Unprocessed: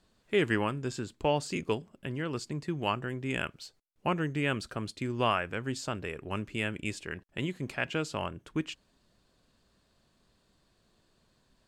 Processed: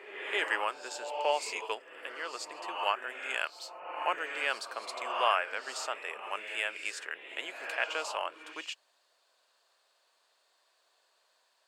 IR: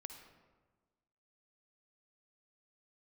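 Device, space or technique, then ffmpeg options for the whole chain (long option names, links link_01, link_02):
ghost voice: -filter_complex "[0:a]areverse[link_01];[1:a]atrim=start_sample=2205[link_02];[link_01][link_02]afir=irnorm=-1:irlink=0,areverse,highpass=frequency=580:width=0.5412,highpass=frequency=580:width=1.3066,volume=7dB"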